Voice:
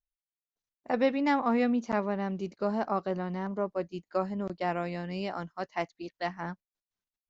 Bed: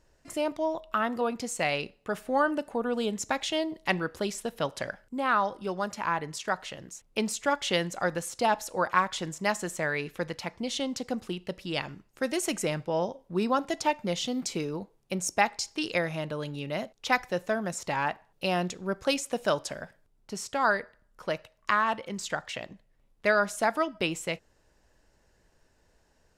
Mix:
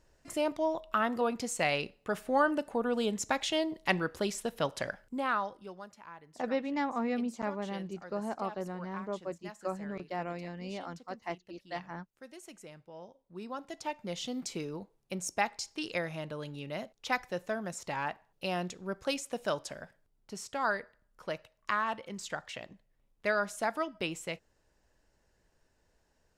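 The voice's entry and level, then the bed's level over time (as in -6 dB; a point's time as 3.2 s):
5.50 s, -6.0 dB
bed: 5.12 s -1.5 dB
6.06 s -20.5 dB
12.94 s -20.5 dB
14.3 s -6 dB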